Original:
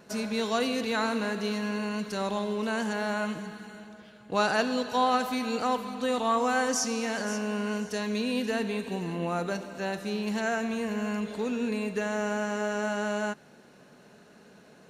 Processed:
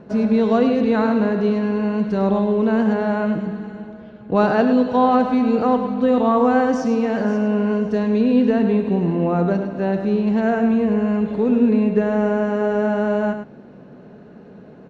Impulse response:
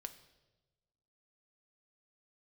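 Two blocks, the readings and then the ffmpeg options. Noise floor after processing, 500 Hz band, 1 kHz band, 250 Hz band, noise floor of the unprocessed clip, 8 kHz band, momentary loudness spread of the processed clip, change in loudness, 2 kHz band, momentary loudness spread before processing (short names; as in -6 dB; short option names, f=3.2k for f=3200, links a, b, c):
-42 dBFS, +11.5 dB, +7.5 dB, +14.0 dB, -55 dBFS, under -10 dB, 6 LU, +11.0 dB, +2.5 dB, 7 LU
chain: -af "lowpass=3.6k,tiltshelf=f=970:g=9,aecho=1:1:103:0.355,volume=6dB"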